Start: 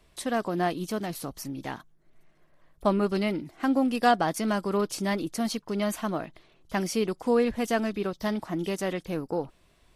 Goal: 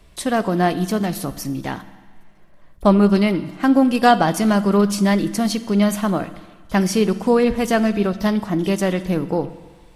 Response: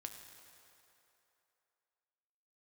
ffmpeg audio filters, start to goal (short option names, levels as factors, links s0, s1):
-filter_complex "[0:a]asplit=2[s0][s1];[1:a]atrim=start_sample=2205,asetrate=83790,aresample=44100,lowshelf=f=210:g=11.5[s2];[s1][s2]afir=irnorm=-1:irlink=0,volume=2.24[s3];[s0][s3]amix=inputs=2:normalize=0,volume=1.5"